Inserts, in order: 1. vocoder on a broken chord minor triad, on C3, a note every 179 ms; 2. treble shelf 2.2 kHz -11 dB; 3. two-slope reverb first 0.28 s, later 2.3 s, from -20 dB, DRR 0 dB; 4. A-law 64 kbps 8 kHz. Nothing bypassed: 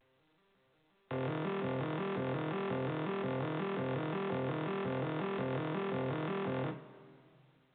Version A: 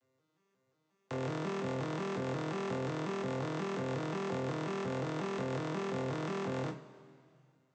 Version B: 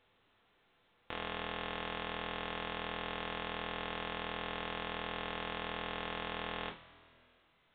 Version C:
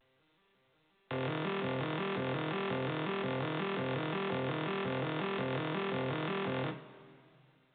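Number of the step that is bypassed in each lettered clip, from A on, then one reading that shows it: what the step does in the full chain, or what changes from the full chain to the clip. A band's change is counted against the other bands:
4, 4 kHz band +2.0 dB; 1, 4 kHz band +16.5 dB; 2, 4 kHz band +7.0 dB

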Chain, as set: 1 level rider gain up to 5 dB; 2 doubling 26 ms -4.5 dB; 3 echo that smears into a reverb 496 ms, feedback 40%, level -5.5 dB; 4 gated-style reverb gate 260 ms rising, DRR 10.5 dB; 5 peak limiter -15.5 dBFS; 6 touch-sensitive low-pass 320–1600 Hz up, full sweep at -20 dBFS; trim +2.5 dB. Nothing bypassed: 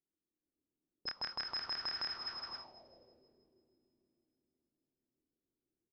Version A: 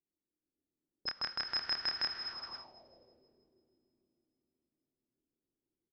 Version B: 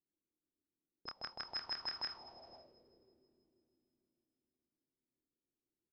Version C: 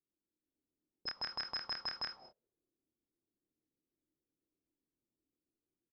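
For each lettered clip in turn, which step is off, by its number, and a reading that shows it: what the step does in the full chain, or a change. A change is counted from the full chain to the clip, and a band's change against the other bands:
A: 5, crest factor change +1.5 dB; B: 1, crest factor change +2.0 dB; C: 3, momentary loudness spread change -2 LU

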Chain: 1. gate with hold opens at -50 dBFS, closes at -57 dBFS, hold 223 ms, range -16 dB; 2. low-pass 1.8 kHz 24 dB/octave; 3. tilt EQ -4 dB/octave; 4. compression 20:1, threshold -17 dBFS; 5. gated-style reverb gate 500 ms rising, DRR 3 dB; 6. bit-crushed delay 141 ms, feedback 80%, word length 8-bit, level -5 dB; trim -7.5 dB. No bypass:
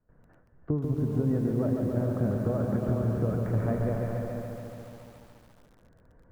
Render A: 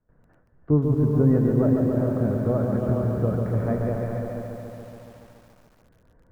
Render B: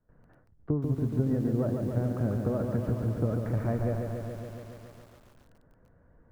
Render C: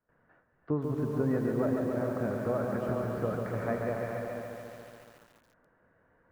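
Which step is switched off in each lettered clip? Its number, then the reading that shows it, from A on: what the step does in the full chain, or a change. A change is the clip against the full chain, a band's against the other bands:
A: 4, mean gain reduction 3.5 dB; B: 5, momentary loudness spread change +1 LU; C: 3, 125 Hz band -9.5 dB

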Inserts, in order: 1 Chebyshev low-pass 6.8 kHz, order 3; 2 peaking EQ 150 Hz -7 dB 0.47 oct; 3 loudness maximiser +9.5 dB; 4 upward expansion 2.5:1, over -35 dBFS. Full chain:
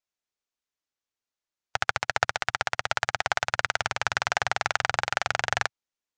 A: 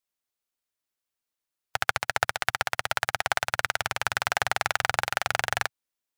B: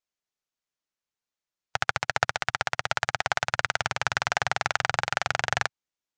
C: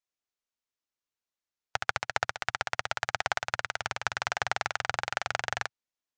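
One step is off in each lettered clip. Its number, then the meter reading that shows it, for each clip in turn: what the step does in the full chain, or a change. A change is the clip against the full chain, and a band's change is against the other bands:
1, 8 kHz band +2.0 dB; 2, 250 Hz band +3.0 dB; 3, loudness change -5.0 LU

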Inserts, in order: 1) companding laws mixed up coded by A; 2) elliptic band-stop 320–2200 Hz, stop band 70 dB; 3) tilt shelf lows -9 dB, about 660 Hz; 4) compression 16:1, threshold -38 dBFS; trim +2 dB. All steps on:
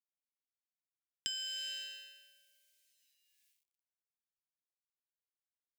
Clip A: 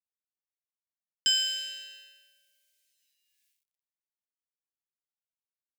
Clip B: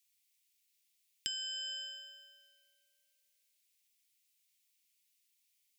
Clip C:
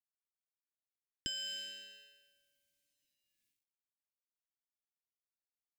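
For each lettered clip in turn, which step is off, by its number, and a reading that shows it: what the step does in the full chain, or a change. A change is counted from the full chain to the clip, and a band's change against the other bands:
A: 4, mean gain reduction 4.5 dB; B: 1, distortion -20 dB; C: 3, crest factor change -2.0 dB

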